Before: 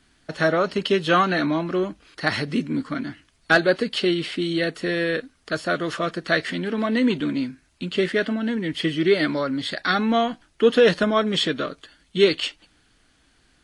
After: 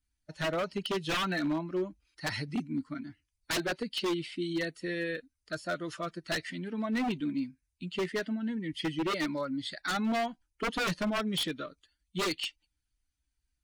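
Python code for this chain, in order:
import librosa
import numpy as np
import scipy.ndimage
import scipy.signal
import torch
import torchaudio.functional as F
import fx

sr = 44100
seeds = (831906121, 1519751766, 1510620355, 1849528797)

y = fx.bin_expand(x, sr, power=1.5)
y = 10.0 ** (-20.0 / 20.0) * (np.abs((y / 10.0 ** (-20.0 / 20.0) + 3.0) % 4.0 - 2.0) - 1.0)
y = y * 10.0 ** (-5.0 / 20.0)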